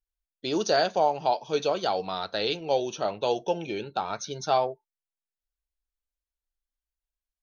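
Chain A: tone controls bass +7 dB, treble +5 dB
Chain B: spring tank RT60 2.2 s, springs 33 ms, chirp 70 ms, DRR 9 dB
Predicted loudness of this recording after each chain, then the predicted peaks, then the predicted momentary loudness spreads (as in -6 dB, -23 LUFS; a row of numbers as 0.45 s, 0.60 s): -27.0 LUFS, -27.5 LUFS; -9.5 dBFS, -10.5 dBFS; 8 LU, 9 LU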